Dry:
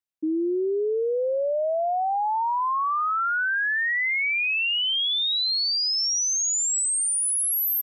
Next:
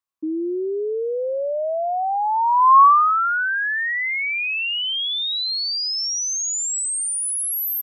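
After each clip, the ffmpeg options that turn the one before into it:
ffmpeg -i in.wav -af "equalizer=frequency=1100:width=3.8:gain=15" out.wav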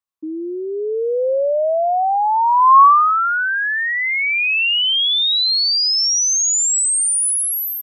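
ffmpeg -i in.wav -af "dynaudnorm=framelen=660:gausssize=3:maxgain=10dB,volume=-2.5dB" out.wav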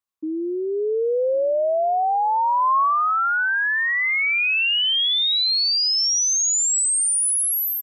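ffmpeg -i in.wav -filter_complex "[0:a]acompressor=threshold=-19dB:ratio=4,asplit=2[link_01][link_02];[link_02]adelay=1108,volume=-25dB,highshelf=frequency=4000:gain=-24.9[link_03];[link_01][link_03]amix=inputs=2:normalize=0" out.wav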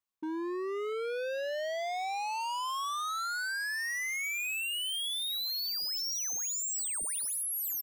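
ffmpeg -i in.wav -af "volume=31dB,asoftclip=hard,volume=-31dB,volume=-3dB" out.wav

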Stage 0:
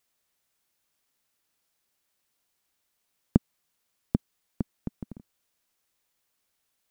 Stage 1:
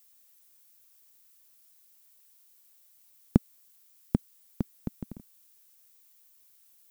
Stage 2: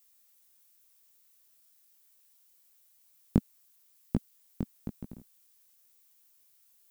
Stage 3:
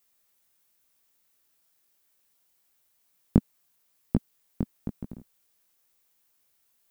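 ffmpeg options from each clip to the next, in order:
ffmpeg -i in.wav -af "aemphasis=mode=production:type=75kf" out.wav
ffmpeg -i in.wav -af "flanger=delay=17:depth=4.8:speed=0.98" out.wav
ffmpeg -i in.wav -af "highshelf=frequency=3000:gain=-10,volume=4.5dB" out.wav

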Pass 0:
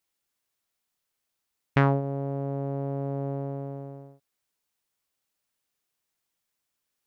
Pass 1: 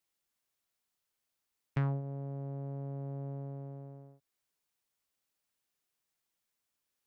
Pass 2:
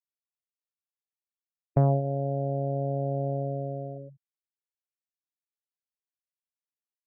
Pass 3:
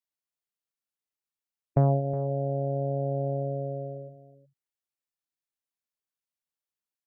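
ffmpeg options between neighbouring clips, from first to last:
ffmpeg -i in.wav -filter_complex "[0:a]acrossover=split=140[link_01][link_02];[link_02]acompressor=threshold=-58dB:ratio=1.5[link_03];[link_01][link_03]amix=inputs=2:normalize=0,volume=-3.5dB" out.wav
ffmpeg -i in.wav -af "afftfilt=real='re*gte(hypot(re,im),0.00708)':imag='im*gte(hypot(re,im),0.00708)':win_size=1024:overlap=0.75,lowpass=frequency=640:width_type=q:width=4.9,volume=8.5dB" out.wav
ffmpeg -i in.wav -af "aecho=1:1:366:0.168" out.wav

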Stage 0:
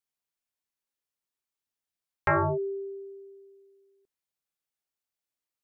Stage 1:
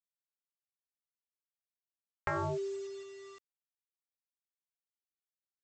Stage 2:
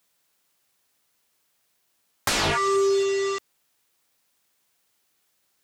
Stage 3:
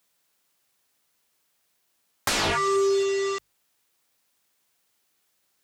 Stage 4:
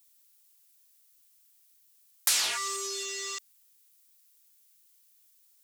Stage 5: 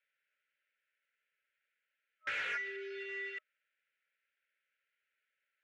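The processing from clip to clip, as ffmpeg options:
ffmpeg -i in.wav -af "acompressor=threshold=-26dB:ratio=16,aresample=16000,acrusher=bits=7:mix=0:aa=0.000001,aresample=44100,volume=-5dB" out.wav
ffmpeg -i in.wav -filter_complex "[0:a]highpass=frequency=97:poles=1,asplit=2[link_01][link_02];[link_02]aeval=exprs='0.0794*sin(PI/2*8.91*val(0)/0.0794)':channel_layout=same,volume=-5dB[link_03];[link_01][link_03]amix=inputs=2:normalize=0,volume=7dB" out.wav
ffmpeg -i in.wav -af "bandreject=frequency=50:width_type=h:width=6,bandreject=frequency=100:width_type=h:width=6,bandreject=frequency=150:width_type=h:width=6,volume=-1dB" out.wav
ffmpeg -i in.wav -af "aderivative,volume=4.5dB" out.wav
ffmpeg -i in.wav -filter_complex "[0:a]asuperpass=centerf=1000:order=8:qfactor=0.5,afftfilt=real='re*(1-between(b*sr/4096,620,1300))':imag='im*(1-between(b*sr/4096,620,1300))':win_size=4096:overlap=0.75,asplit=2[link_01][link_02];[link_02]highpass=frequency=720:poles=1,volume=12dB,asoftclip=type=tanh:threshold=-26.5dB[link_03];[link_01][link_03]amix=inputs=2:normalize=0,lowpass=frequency=1900:poles=1,volume=-6dB" out.wav

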